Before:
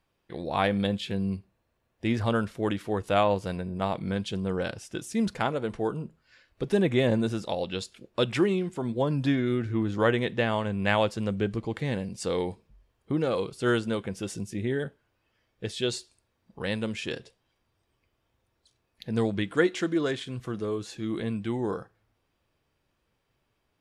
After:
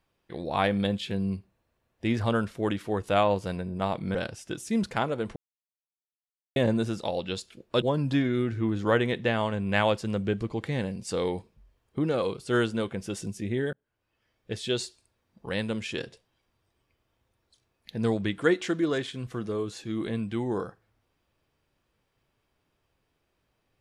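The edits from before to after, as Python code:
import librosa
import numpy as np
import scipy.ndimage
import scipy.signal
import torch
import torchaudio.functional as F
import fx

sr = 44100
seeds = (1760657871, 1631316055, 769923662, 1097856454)

y = fx.edit(x, sr, fx.cut(start_s=4.15, length_s=0.44),
    fx.silence(start_s=5.8, length_s=1.2),
    fx.cut(start_s=8.26, length_s=0.69),
    fx.fade_in_span(start_s=14.86, length_s=0.91, curve='qsin'), tone=tone)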